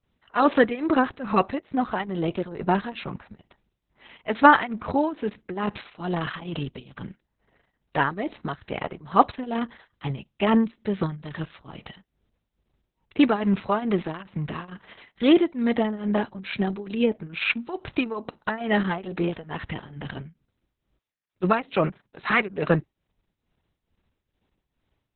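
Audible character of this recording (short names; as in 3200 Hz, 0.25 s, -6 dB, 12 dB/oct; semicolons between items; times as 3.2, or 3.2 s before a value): tremolo triangle 2.3 Hz, depth 90%; Opus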